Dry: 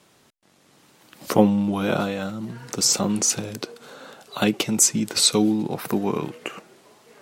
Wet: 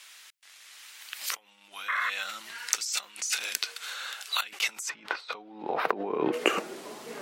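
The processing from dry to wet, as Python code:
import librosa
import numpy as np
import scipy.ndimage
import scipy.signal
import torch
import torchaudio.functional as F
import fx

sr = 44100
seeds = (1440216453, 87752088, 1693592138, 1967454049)

y = fx.over_compress(x, sr, threshold_db=-31.0, ratio=-1.0)
y = fx.filter_sweep_highpass(y, sr, from_hz=2000.0, to_hz=200.0, start_s=4.32, end_s=7.07, q=1.2)
y = fx.spec_paint(y, sr, seeds[0], shape='noise', start_s=1.88, length_s=0.22, low_hz=990.0, high_hz=2200.0, level_db=-31.0)
y = fx.air_absorb(y, sr, metres=350.0, at=(4.88, 6.32), fade=0.02)
y = y * 10.0 ** (2.5 / 20.0)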